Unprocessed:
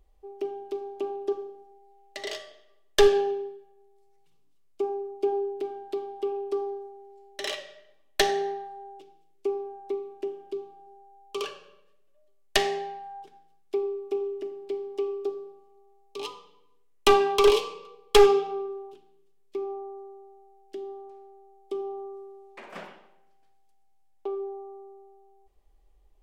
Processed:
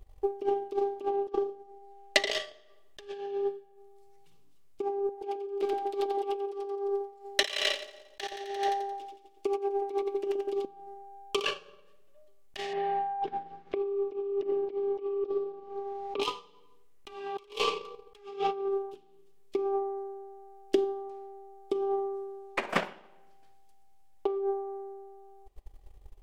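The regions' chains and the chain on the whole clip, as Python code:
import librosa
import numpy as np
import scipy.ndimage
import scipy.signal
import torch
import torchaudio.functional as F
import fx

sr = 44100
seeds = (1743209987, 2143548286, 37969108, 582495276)

y = fx.chain(x, sr, fx.high_shelf(hz=11000.0, db=-7.0),
    fx.hum_notches(base_hz=60, count=7), at=(1.08, 2.32))
y = fx.chain(y, sr, fx.low_shelf(hz=290.0, db=-11.5),
    fx.echo_split(split_hz=720.0, low_ms=120, high_ms=87, feedback_pct=52, wet_db=-3.5), at=(5.09, 10.65))
y = fx.chain(y, sr, fx.air_absorb(metres=240.0),
    fx.band_squash(depth_pct=100), at=(12.73, 16.2))
y = fx.dynamic_eq(y, sr, hz=2700.0, q=1.1, threshold_db=-45.0, ratio=4.0, max_db=5)
y = fx.over_compress(y, sr, threshold_db=-36.0, ratio=-1.0)
y = fx.transient(y, sr, attack_db=11, sustain_db=-8)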